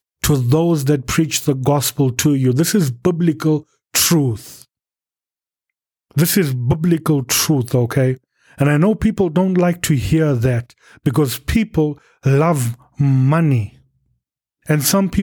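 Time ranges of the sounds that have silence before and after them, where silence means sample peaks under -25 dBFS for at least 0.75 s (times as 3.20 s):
6.17–13.66 s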